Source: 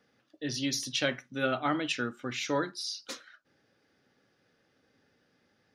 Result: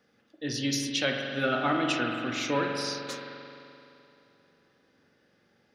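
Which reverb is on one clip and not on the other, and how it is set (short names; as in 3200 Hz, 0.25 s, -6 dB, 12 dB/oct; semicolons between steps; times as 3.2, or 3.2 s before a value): spring tank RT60 2.8 s, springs 43 ms, chirp 30 ms, DRR 1.5 dB; gain +1 dB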